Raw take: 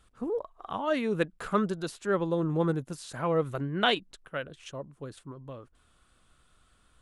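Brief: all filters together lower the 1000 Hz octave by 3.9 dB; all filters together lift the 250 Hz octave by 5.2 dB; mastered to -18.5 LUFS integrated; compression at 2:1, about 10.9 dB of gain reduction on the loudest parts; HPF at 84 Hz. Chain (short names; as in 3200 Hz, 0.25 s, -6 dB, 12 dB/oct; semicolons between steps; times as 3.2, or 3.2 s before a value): HPF 84 Hz; bell 250 Hz +8 dB; bell 1000 Hz -6 dB; compressor 2:1, threshold -40 dBFS; gain +20 dB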